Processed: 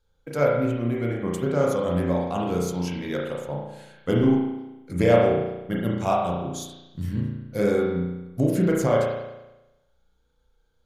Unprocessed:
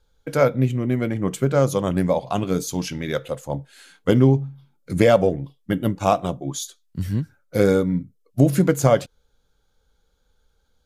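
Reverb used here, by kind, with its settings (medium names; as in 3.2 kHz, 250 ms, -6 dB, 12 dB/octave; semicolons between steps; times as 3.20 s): spring tank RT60 1 s, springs 34 ms, chirp 65 ms, DRR -3 dB; trim -7.5 dB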